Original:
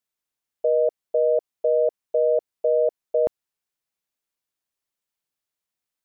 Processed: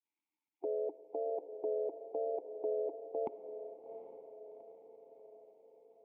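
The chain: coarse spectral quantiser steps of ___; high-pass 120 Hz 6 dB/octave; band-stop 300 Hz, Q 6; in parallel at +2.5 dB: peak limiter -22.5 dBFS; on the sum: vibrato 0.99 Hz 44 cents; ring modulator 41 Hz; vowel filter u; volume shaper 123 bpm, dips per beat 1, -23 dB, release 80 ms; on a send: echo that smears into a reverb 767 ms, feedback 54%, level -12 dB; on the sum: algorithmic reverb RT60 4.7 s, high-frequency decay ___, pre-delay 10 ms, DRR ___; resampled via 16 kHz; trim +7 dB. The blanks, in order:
15 dB, 0.75×, 14.5 dB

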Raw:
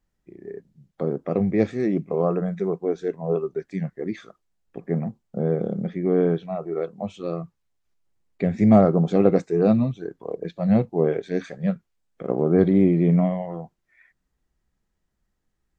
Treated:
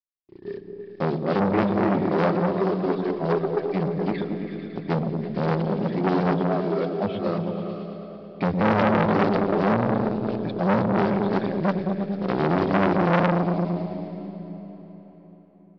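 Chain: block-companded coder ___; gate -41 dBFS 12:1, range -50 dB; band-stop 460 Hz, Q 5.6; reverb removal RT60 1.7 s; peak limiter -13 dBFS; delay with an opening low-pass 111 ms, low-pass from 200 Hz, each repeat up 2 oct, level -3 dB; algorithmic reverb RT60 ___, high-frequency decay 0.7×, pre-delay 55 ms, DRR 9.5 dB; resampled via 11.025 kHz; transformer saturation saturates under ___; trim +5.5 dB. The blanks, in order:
5-bit, 4.6 s, 1.3 kHz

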